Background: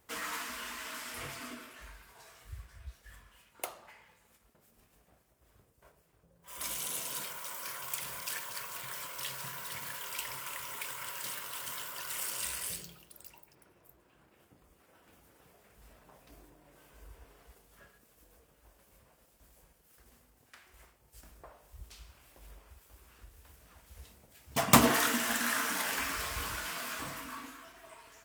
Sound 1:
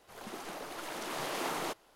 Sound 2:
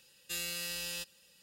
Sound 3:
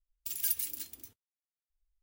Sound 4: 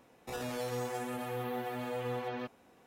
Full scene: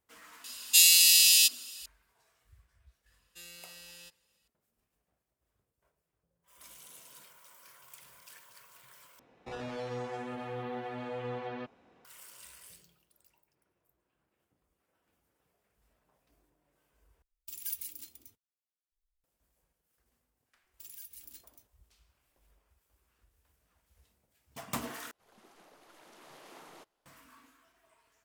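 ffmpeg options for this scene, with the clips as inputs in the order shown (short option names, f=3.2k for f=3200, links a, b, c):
-filter_complex "[2:a]asplit=2[a][b];[3:a]asplit=2[c][d];[0:a]volume=-15.5dB[e];[a]aexciter=amount=15.9:drive=7.1:freq=2.2k[f];[4:a]lowpass=4.3k[g];[c]bandreject=f=1.7k:w=11[h];[d]alimiter=level_in=1.5dB:limit=-24dB:level=0:latency=1:release=127,volume=-1.5dB[i];[e]asplit=4[j][k][l][m];[j]atrim=end=9.194[n];[g]atrim=end=2.86,asetpts=PTS-STARTPTS,volume=-1.5dB[o];[k]atrim=start=12.046:end=17.224[p];[h]atrim=end=2.02,asetpts=PTS-STARTPTS,volume=-6.5dB[q];[l]atrim=start=19.236:end=25.114[r];[1:a]atrim=end=1.95,asetpts=PTS-STARTPTS,volume=-17.5dB[s];[m]atrim=start=27.056[t];[f]atrim=end=1.42,asetpts=PTS-STARTPTS,volume=-9dB,afade=t=in:d=0.004:c=hsin,afade=t=out:st=1.416:d=0.004:c=hsin,adelay=440[u];[b]atrim=end=1.42,asetpts=PTS-STARTPTS,volume=-12dB,afade=t=in:d=0.004:c=hsin,afade=t=out:st=1.416:d=0.004:c=hsin,adelay=3060[v];[i]atrim=end=2.02,asetpts=PTS-STARTPTS,volume=-10.5dB,afade=t=in:d=0.004:c=hsin,afade=t=out:st=2.016:d=0.004:c=hsin,adelay=20540[w];[n][o]acrossfade=d=0.004:c1=hsin:c2=hsin[x];[x][p]acrossfade=d=0.004:c1=hsin:c2=hsin[y];[y][q]acrossfade=d=0.004:c1=hsin:c2=hsin[z];[z][r]acrossfade=d=0.004:c1=hsin:c2=hsin[aa];[aa][s]acrossfade=d=0.004:c1=hsin:c2=hsin[ab];[ab][t]acrossfade=d=0.004:c1=hsin:c2=hsin[ac];[ac][u][v][w]amix=inputs=4:normalize=0"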